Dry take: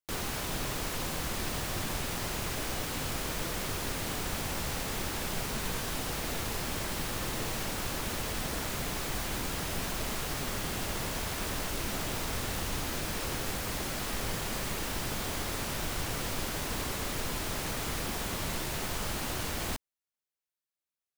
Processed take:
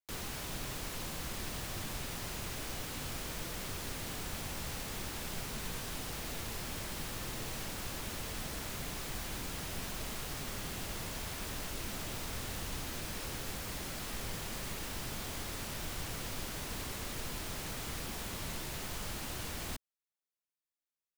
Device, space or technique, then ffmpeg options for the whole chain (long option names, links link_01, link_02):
one-band saturation: -filter_complex "[0:a]acrossover=split=230|2000[link_01][link_02][link_03];[link_02]asoftclip=type=tanh:threshold=-37dB[link_04];[link_01][link_04][link_03]amix=inputs=3:normalize=0,volume=-5.5dB"